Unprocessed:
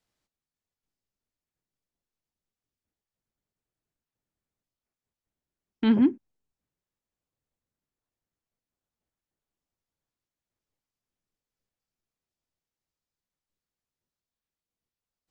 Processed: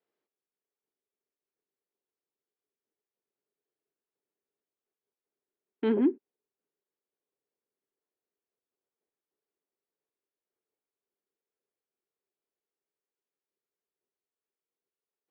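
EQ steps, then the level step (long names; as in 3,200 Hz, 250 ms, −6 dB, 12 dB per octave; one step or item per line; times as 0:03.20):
band-pass filter 270–2,600 Hz
parametric band 410 Hz +13.5 dB 0.54 octaves
−4.5 dB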